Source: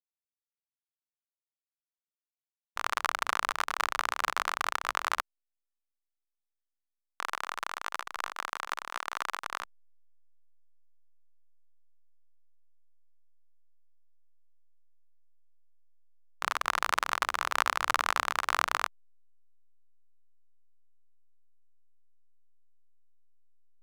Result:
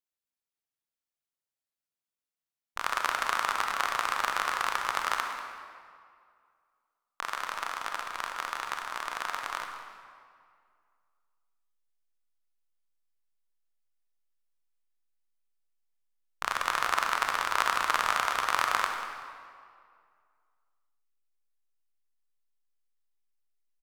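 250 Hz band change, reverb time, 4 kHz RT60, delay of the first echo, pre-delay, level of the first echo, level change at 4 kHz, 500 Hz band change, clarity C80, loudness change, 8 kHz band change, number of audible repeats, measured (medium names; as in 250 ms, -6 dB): +1.5 dB, 2.2 s, 1.5 s, 190 ms, 28 ms, -14.5 dB, +1.5 dB, +2.0 dB, 5.0 dB, +1.5 dB, +1.0 dB, 1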